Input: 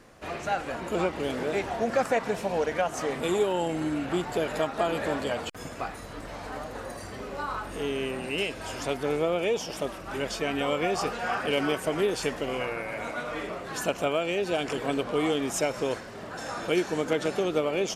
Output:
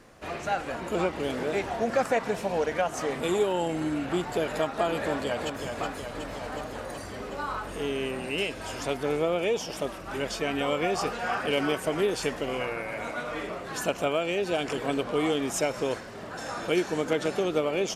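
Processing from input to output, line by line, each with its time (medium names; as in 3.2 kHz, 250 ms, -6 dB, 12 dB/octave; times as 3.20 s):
5.03–5.64 s: echo throw 370 ms, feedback 75%, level -6 dB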